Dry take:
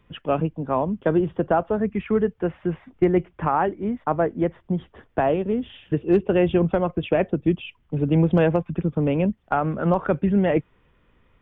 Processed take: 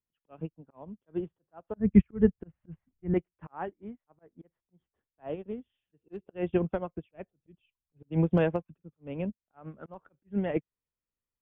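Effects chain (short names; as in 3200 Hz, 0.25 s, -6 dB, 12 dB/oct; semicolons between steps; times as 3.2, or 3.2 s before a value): 1.74–3.14 tone controls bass +15 dB, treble -8 dB; auto swell 0.161 s; 7.08–8.03 low shelf 140 Hz +5 dB; upward expander 2.5:1, over -37 dBFS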